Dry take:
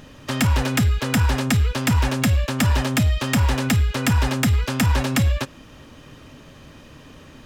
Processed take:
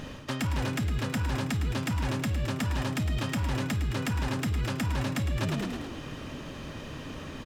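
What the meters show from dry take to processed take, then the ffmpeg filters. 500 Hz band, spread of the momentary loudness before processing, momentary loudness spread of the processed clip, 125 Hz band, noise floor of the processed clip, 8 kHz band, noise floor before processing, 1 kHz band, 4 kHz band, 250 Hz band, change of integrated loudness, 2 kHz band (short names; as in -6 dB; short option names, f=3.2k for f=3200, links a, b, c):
-7.5 dB, 1 LU, 10 LU, -9.5 dB, -41 dBFS, -12.5 dB, -45 dBFS, -9.0 dB, -9.5 dB, -8.5 dB, -10.5 dB, -9.5 dB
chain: -filter_complex "[0:a]asplit=7[a][b][c][d][e][f][g];[b]adelay=108,afreqshift=43,volume=-10dB[h];[c]adelay=216,afreqshift=86,volume=-15.2dB[i];[d]adelay=324,afreqshift=129,volume=-20.4dB[j];[e]adelay=432,afreqshift=172,volume=-25.6dB[k];[f]adelay=540,afreqshift=215,volume=-30.8dB[l];[g]adelay=648,afreqshift=258,volume=-36dB[m];[a][h][i][j][k][l][m]amix=inputs=7:normalize=0,areverse,acompressor=threshold=-30dB:ratio=16,areverse,highshelf=f=7.7k:g=-5.5,volume=4dB"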